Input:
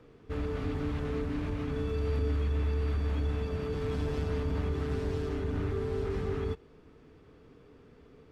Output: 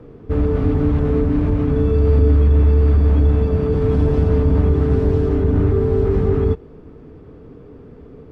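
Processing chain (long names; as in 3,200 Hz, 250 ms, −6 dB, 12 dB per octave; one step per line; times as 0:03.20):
tilt shelving filter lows +8.5 dB, about 1,300 Hz
level +8.5 dB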